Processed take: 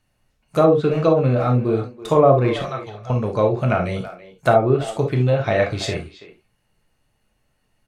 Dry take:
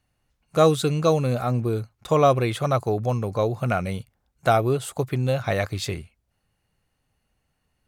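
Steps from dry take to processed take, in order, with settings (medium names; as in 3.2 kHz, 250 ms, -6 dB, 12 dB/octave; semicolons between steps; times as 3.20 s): low-pass that closes with the level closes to 980 Hz, closed at -14.5 dBFS; 2.62–3.10 s: amplifier tone stack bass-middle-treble 10-0-10; speakerphone echo 330 ms, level -14 dB; on a send at -2 dB: reverberation, pre-delay 3 ms; on the sum: trim +3 dB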